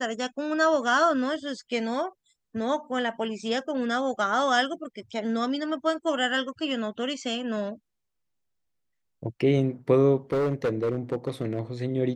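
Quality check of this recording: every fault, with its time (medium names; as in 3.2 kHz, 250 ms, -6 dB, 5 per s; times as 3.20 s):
10.32–11.59 s: clipped -21.5 dBFS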